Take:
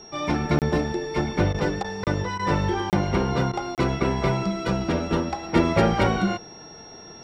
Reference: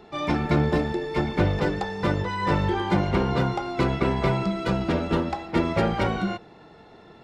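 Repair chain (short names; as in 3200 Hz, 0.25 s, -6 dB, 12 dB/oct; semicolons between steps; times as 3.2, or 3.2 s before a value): notch 5600 Hz, Q 30; interpolate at 0.59/2.04/2.9/3.75, 28 ms; interpolate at 1.53/1.83/2.38/3.52, 12 ms; gain correction -3.5 dB, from 5.43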